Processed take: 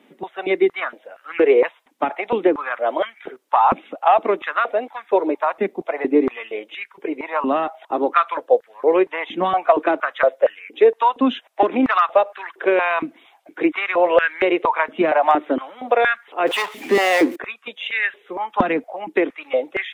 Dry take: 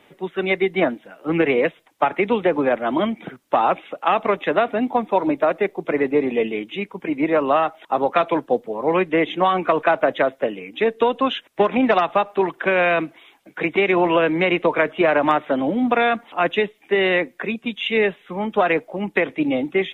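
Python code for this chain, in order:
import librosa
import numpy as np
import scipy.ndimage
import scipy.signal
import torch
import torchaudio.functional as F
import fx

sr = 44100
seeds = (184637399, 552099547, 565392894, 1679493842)

y = fx.power_curve(x, sr, exponent=0.5, at=(16.47, 17.36))
y = fx.filter_held_highpass(y, sr, hz=4.3, low_hz=240.0, high_hz=1600.0)
y = y * librosa.db_to_amplitude(-4.0)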